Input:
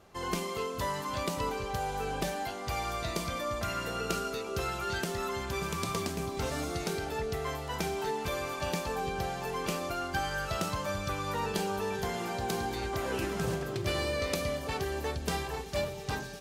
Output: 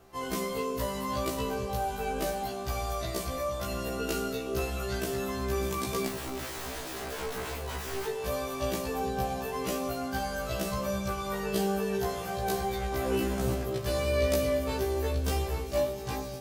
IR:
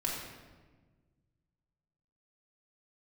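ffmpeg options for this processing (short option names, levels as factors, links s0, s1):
-filter_complex "[0:a]aemphasis=mode=production:type=50fm,asettb=1/sr,asplit=3[s0][s1][s2];[s0]atrim=end=6.074[s3];[s1]atrim=start=6.07:end=8.07,asetpts=PTS-STARTPTS,afade=t=in:d=0.004:c=qsin,afade=t=out:st=1.996:d=0.004:c=qsin,aeval=exprs='(mod(29.9*val(0)+1,2)-1)/29.9':c=same[s4];[s2]atrim=start=8.066[s5];[s3][s4]acrossfade=d=0.004:c1=hsin:c2=qsin[s6];[s6][s5]acrossfade=d=0.004:c1=qsin:c2=hsin,highshelf=f=3100:g=-10.5,asplit=2[s7][s8];[1:a]atrim=start_sample=2205[s9];[s8][s9]afir=irnorm=-1:irlink=0,volume=0.299[s10];[s7][s10]amix=inputs=2:normalize=0,afftfilt=real='re*1.73*eq(mod(b,3),0)':imag='im*1.73*eq(mod(b,3),0)':win_size=2048:overlap=0.75,volume=1.26"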